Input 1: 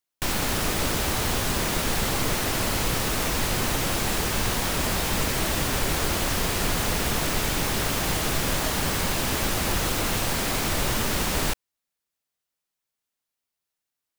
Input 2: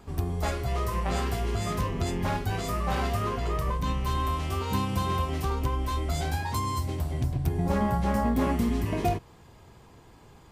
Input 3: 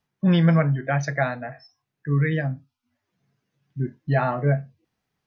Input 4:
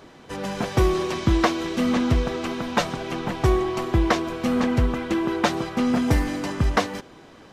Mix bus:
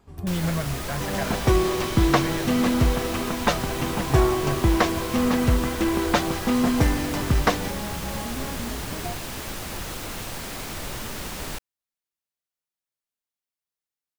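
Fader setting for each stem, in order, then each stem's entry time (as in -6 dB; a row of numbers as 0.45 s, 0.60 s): -8.0 dB, -8.0 dB, -9.0 dB, 0.0 dB; 0.05 s, 0.00 s, 0.00 s, 0.70 s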